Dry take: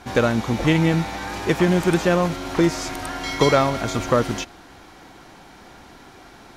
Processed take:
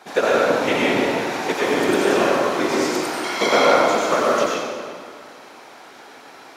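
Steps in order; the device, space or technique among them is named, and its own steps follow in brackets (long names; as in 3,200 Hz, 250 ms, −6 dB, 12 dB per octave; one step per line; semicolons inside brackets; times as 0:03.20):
whispering ghost (random phases in short frames; high-pass filter 380 Hz 12 dB per octave; convolution reverb RT60 2.0 s, pre-delay 81 ms, DRR −5 dB)
level −1.5 dB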